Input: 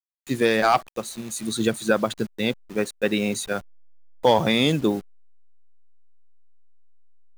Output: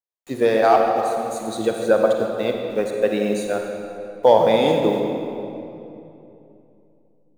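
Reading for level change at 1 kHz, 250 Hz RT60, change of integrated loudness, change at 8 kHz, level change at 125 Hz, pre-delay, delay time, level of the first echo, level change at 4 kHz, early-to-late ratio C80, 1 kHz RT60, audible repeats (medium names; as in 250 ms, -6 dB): +4.5 dB, 3.4 s, +3.5 dB, -5.5 dB, -3.0 dB, 35 ms, no echo, no echo, -4.5 dB, 3.5 dB, 2.7 s, no echo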